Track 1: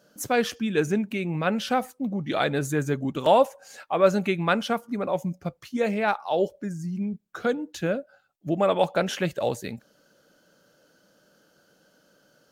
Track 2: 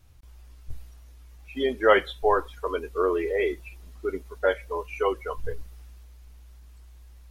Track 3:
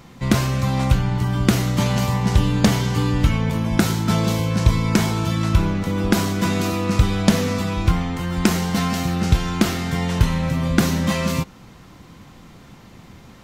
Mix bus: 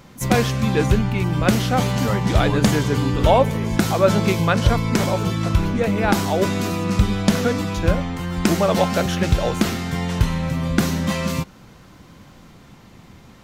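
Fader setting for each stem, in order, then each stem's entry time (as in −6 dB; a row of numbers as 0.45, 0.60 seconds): +2.5, −9.5, −1.5 decibels; 0.00, 0.20, 0.00 seconds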